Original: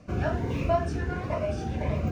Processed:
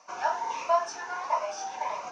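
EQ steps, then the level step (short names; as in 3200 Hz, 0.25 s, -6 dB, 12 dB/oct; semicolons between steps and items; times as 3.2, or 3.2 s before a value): resonant high-pass 910 Hz, resonance Q 8.5; synth low-pass 6000 Hz, resonance Q 5.9; -3.0 dB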